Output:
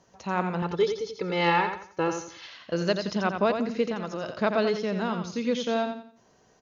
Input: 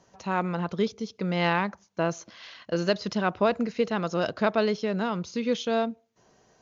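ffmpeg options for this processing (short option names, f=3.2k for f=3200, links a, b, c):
-filter_complex "[0:a]asettb=1/sr,asplit=3[a][b][c];[a]atrim=end=0.624[d];[b]atrim=start=0.62:end=2.47,asetpts=PTS-STARTPTS,afade=t=in:d=0.004:c=qsin,afade=t=out:st=1.846:d=0.004:c=qsin,aecho=1:1:2.3:0.87,atrim=end_sample=81585[e];[c]atrim=start=2.466[f];[d][e]acrossfade=d=0.004:c1=hsin:c2=qsin[g];[g][f]acrossfade=d=0.004:c1=qsin:c2=hsin,asettb=1/sr,asplit=3[h][i][j];[h]atrim=end=3.884[k];[i]atrim=start=3.88:end=4.35,asetpts=PTS-STARTPTS,afade=t=in:d=0.004:c=qsin,afade=t=out:st=0.466:d=0.004:c=qsin,acompressor=threshold=-29dB:ratio=6[l];[j]atrim=start=4.346[m];[k][l]acrossfade=d=0.004:c1=hsin:c2=qsin[n];[n][m]acrossfade=d=0.004:c1=qsin:c2=hsin,aecho=1:1:87|174|261|348:0.447|0.138|0.0429|0.0133,volume=-1dB"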